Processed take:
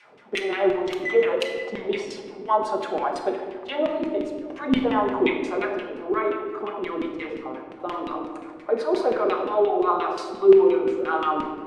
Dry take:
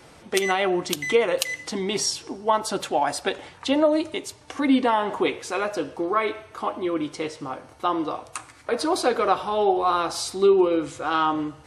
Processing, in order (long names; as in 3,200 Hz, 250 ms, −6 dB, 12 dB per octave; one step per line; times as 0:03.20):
delay with a low-pass on its return 101 ms, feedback 74%, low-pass 470 Hz, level −7 dB
auto-filter band-pass saw down 5.7 Hz 270–2,800 Hz
rectangular room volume 1,100 cubic metres, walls mixed, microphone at 1.3 metres
level +3 dB